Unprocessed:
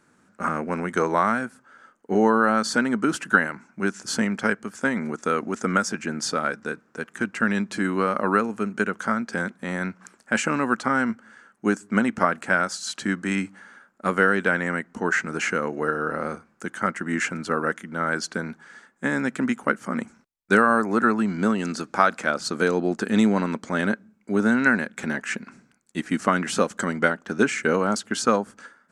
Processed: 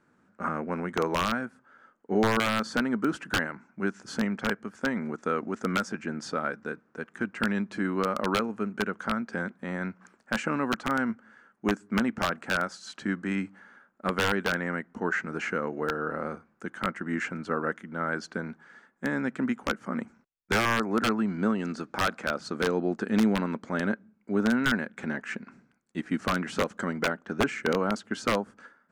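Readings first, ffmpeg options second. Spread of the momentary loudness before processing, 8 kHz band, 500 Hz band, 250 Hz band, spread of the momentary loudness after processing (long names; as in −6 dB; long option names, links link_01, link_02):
10 LU, −9.5 dB, −5.5 dB, −4.5 dB, 9 LU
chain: -af "aeval=exprs='(mod(2.99*val(0)+1,2)-1)/2.99':channel_layout=same,aemphasis=mode=reproduction:type=75kf,volume=-4dB"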